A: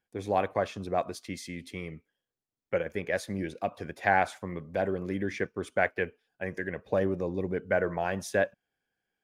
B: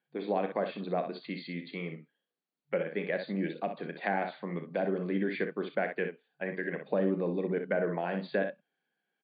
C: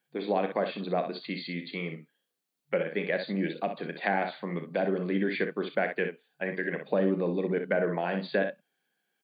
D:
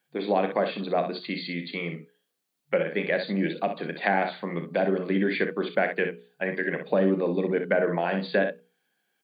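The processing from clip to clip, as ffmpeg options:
-filter_complex "[0:a]aecho=1:1:35|62:0.266|0.376,acrossover=split=460[a][b];[b]acompressor=threshold=-33dB:ratio=3[c];[a][c]amix=inputs=2:normalize=0,afftfilt=real='re*between(b*sr/4096,140,4700)':imag='im*between(b*sr/4096,140,4700)':win_size=4096:overlap=0.75"
-af "highshelf=f=3.7k:g=8.5,volume=2.5dB"
-af "bandreject=f=60:t=h:w=6,bandreject=f=120:t=h:w=6,bandreject=f=180:t=h:w=6,bandreject=f=240:t=h:w=6,bandreject=f=300:t=h:w=6,bandreject=f=360:t=h:w=6,bandreject=f=420:t=h:w=6,bandreject=f=480:t=h:w=6,volume=4dB"

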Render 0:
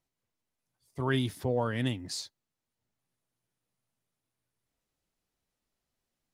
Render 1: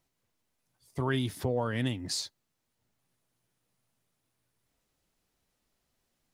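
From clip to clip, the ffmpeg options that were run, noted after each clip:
-af "acompressor=threshold=-38dB:ratio=2,volume=6.5dB"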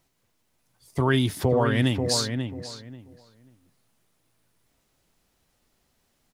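-filter_complex "[0:a]asplit=2[a][b];[b]adelay=538,lowpass=f=1.9k:p=1,volume=-6dB,asplit=2[c][d];[d]adelay=538,lowpass=f=1.9k:p=1,volume=0.21,asplit=2[e][f];[f]adelay=538,lowpass=f=1.9k:p=1,volume=0.21[g];[a][c][e][g]amix=inputs=4:normalize=0,volume=8dB"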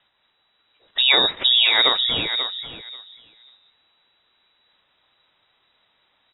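-af "crystalizer=i=6:c=0,lowpass=f=3.3k:t=q:w=0.5098,lowpass=f=3.3k:t=q:w=0.6013,lowpass=f=3.3k:t=q:w=0.9,lowpass=f=3.3k:t=q:w=2.563,afreqshift=-3900,volume=3.5dB"

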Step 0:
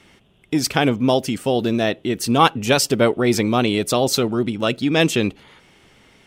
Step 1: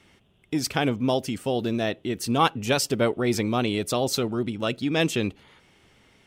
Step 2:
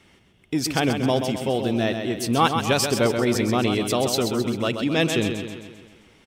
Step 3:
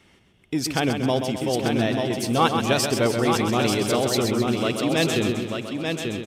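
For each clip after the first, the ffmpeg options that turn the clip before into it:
-af "equalizer=f=87:t=o:w=0.69:g=4,volume=-6.5dB"
-af "aecho=1:1:131|262|393|524|655|786|917:0.447|0.241|0.13|0.0703|0.038|0.0205|0.0111,acontrast=38,volume=-3.5dB"
-filter_complex "[0:a]asplit=2[a][b];[b]aecho=0:1:889|1778|2667:0.562|0.101|0.0182[c];[a][c]amix=inputs=2:normalize=0,aresample=32000,aresample=44100,volume=-1dB"

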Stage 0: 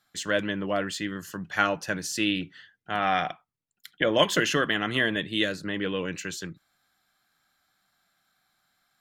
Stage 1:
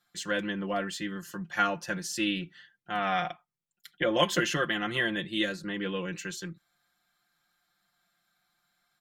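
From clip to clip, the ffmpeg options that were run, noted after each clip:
-af "aecho=1:1:5.7:0.79,volume=-5.5dB"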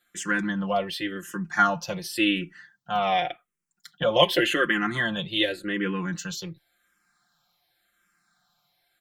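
-filter_complex "[0:a]asplit=2[a][b];[b]afreqshift=-0.89[c];[a][c]amix=inputs=2:normalize=1,volume=7.5dB"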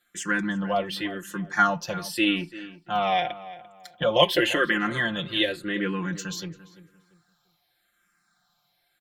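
-filter_complex "[0:a]asplit=2[a][b];[b]adelay=343,lowpass=f=2.5k:p=1,volume=-16dB,asplit=2[c][d];[d]adelay=343,lowpass=f=2.5k:p=1,volume=0.31,asplit=2[e][f];[f]adelay=343,lowpass=f=2.5k:p=1,volume=0.31[g];[a][c][e][g]amix=inputs=4:normalize=0"

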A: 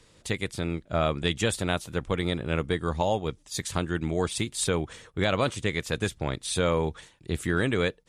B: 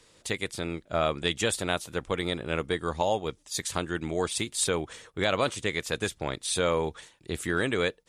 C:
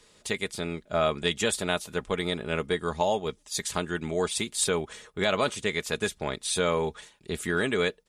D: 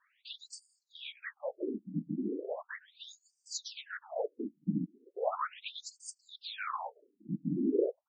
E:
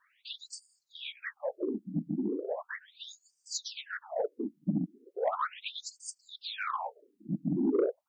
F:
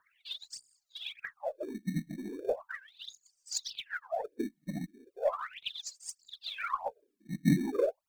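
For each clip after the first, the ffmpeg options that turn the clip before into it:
-af "bass=f=250:g=-7,treble=f=4k:g=2"
-af "aecho=1:1:4.8:0.42"
-af "afftfilt=real='hypot(re,im)*cos(2*PI*random(0))':imag='hypot(re,im)*sin(2*PI*random(1))':win_size=512:overlap=0.75,equalizer=f=100:w=0.36:g=14,afftfilt=real='re*between(b*sr/1024,220*pow(6500/220,0.5+0.5*sin(2*PI*0.37*pts/sr))/1.41,220*pow(6500/220,0.5+0.5*sin(2*PI*0.37*pts/sr))*1.41)':imag='im*between(b*sr/1024,220*pow(6500/220,0.5+0.5*sin(2*PI*0.37*pts/sr))/1.41,220*pow(6500/220,0.5+0.5*sin(2*PI*0.37*pts/sr))*1.41)':win_size=1024:overlap=0.75"
-af "asoftclip=type=tanh:threshold=-22dB,volume=3.5dB"
-filter_complex "[0:a]aphaser=in_gain=1:out_gain=1:delay=2:decay=0.79:speed=1.6:type=triangular,acrossover=split=250[a][b];[a]acrusher=samples=22:mix=1:aa=0.000001[c];[c][b]amix=inputs=2:normalize=0,volume=-4dB"

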